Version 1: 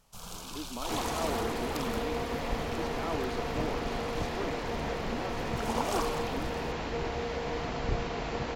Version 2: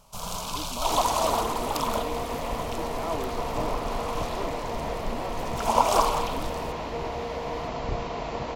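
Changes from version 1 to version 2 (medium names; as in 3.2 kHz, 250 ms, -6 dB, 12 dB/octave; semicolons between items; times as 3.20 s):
first sound +8.5 dB; master: add graphic EQ with 31 bands 630 Hz +7 dB, 1 kHz +7 dB, 1.6 kHz -5 dB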